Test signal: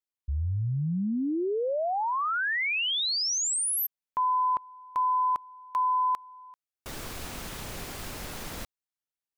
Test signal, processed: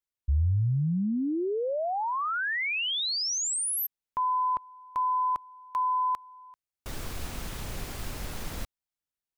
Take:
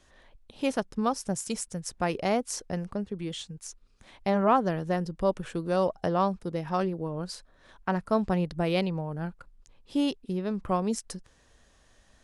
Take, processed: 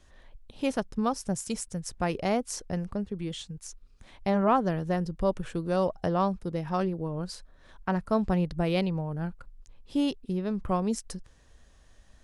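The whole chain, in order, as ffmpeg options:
-af "lowshelf=f=120:g=9,volume=-1.5dB"

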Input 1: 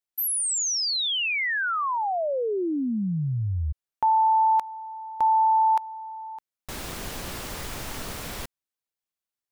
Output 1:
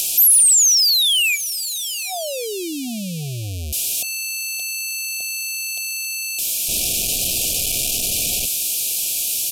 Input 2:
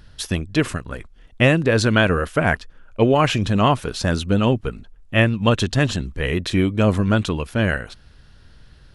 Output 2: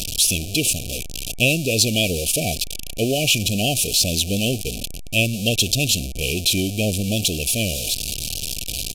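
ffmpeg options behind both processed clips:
-af "aeval=exprs='val(0)+0.5*0.106*sgn(val(0))':c=same,afftfilt=real='re*(1-between(b*sr/4096,760,2300))':imag='im*(1-between(b*sr/4096,760,2300))':win_size=4096:overlap=0.75,acompressor=mode=upward:threshold=-26dB:ratio=1.5:attack=18:release=56:knee=2.83:detection=peak,aexciter=amount=4.9:drive=1.4:freq=2.3k,aresample=32000,aresample=44100,volume=-7dB"

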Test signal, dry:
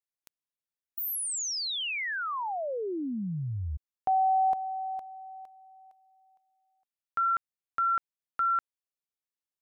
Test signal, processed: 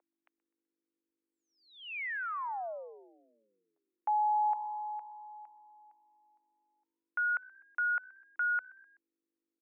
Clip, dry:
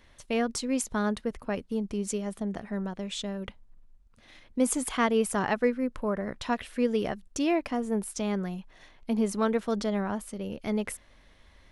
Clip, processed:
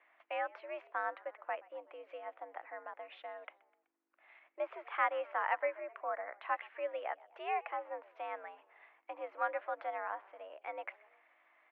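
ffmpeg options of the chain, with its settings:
-filter_complex "[0:a]aeval=exprs='val(0)+0.00562*(sin(2*PI*50*n/s)+sin(2*PI*2*50*n/s)/2+sin(2*PI*3*50*n/s)/3+sin(2*PI*4*50*n/s)/4+sin(2*PI*5*50*n/s)/5)':c=same,asplit=4[a][b][c][d];[b]adelay=126,afreqshift=61,volume=-23.5dB[e];[c]adelay=252,afreqshift=122,volume=-29dB[f];[d]adelay=378,afreqshift=183,volume=-34.5dB[g];[a][e][f][g]amix=inputs=4:normalize=0,highpass=f=540:t=q:w=0.5412,highpass=f=540:t=q:w=1.307,lowpass=f=2.4k:t=q:w=0.5176,lowpass=f=2.4k:t=q:w=0.7071,lowpass=f=2.4k:t=q:w=1.932,afreqshift=84,volume=-4dB"

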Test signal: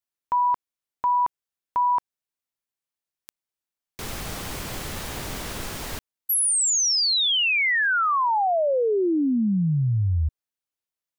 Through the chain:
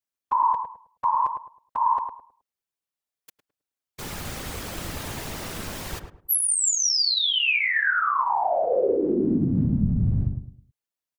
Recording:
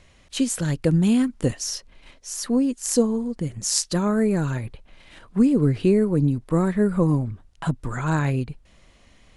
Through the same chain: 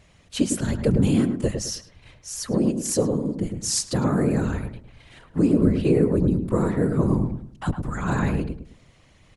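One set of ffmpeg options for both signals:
-filter_complex "[0:a]afftfilt=real='hypot(re,im)*cos(2*PI*random(0))':imag='hypot(re,im)*sin(2*PI*random(1))':win_size=512:overlap=0.75,asplit=2[a][b];[b]adelay=106,lowpass=f=1.1k:p=1,volume=-5.5dB,asplit=2[c][d];[d]adelay=106,lowpass=f=1.1k:p=1,volume=0.32,asplit=2[e][f];[f]adelay=106,lowpass=f=1.1k:p=1,volume=0.32,asplit=2[g][h];[h]adelay=106,lowpass=f=1.1k:p=1,volume=0.32[i];[a][c][e][g][i]amix=inputs=5:normalize=0,volume=4.5dB"

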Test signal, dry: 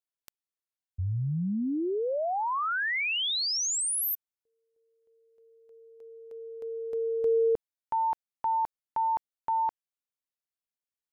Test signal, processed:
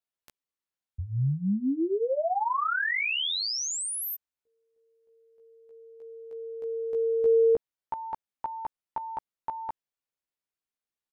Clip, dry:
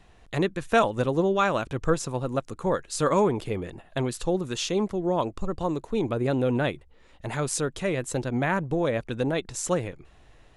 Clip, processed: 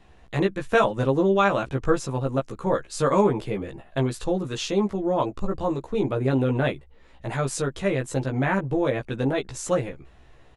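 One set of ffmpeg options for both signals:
-filter_complex "[0:a]highshelf=f=4.6k:g=-6.5,asplit=2[a][b];[b]adelay=15,volume=-2dB[c];[a][c]amix=inputs=2:normalize=0"

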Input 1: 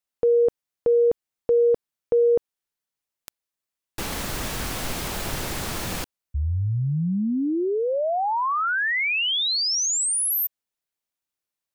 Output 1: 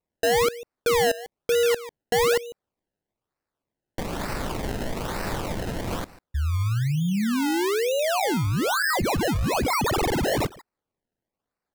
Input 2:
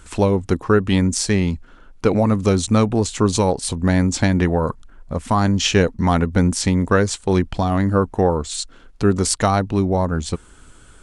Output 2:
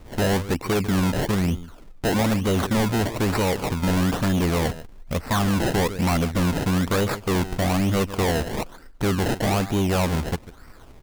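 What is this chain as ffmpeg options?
-filter_complex "[0:a]asplit=2[a][b];[b]adelay=145.8,volume=-19dB,highshelf=f=4k:g=-3.28[c];[a][c]amix=inputs=2:normalize=0,acrusher=samples=26:mix=1:aa=0.000001:lfo=1:lforange=26:lforate=1.1,volume=18.5dB,asoftclip=hard,volume=-18.5dB"

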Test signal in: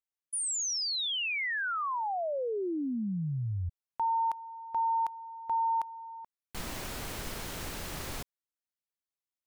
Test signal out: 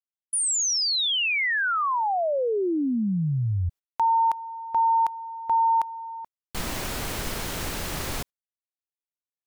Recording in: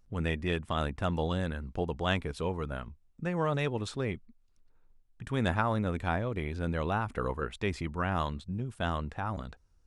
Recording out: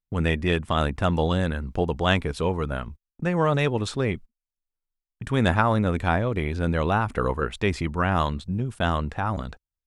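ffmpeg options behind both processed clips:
-af "agate=range=-34dB:threshold=-48dB:ratio=16:release=113:detection=rms,volume=8dB"

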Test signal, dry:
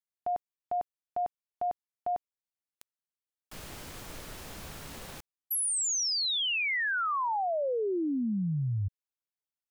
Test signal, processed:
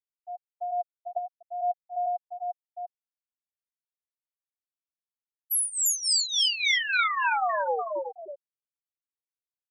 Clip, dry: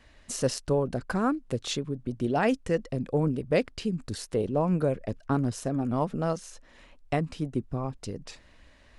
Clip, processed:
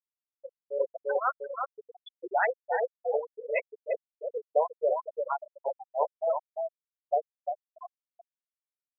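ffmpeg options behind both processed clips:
-filter_complex "[0:a]asplit=2[a][b];[b]aecho=0:1:348|696|1044|1392|1740|2088:0.708|0.319|0.143|0.0645|0.029|0.0131[c];[a][c]amix=inputs=2:normalize=0,flanger=delay=8.1:depth=1.1:regen=-54:speed=0.4:shape=triangular,highpass=f=540:w=0.5412,highpass=f=540:w=1.3066,acrossover=split=900[d][e];[d]aeval=exprs='val(0)*(1-0.7/2+0.7/2*cos(2*PI*3.5*n/s))':c=same[f];[e]aeval=exprs='val(0)*(1-0.7/2-0.7/2*cos(2*PI*3.5*n/s))':c=same[g];[f][g]amix=inputs=2:normalize=0,dynaudnorm=f=140:g=7:m=16dB,afftfilt=real='re*gte(hypot(re,im),0.316)':imag='im*gte(hypot(re,im),0.316)':win_size=1024:overlap=0.75,volume=-5.5dB"

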